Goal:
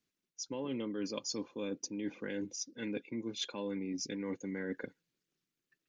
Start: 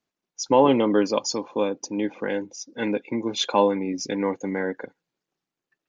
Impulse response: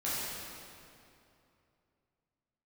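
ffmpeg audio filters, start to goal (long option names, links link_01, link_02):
-af "equalizer=frequency=800:width_type=o:width=1.2:gain=-14.5,areverse,acompressor=threshold=-35dB:ratio=10,areverse"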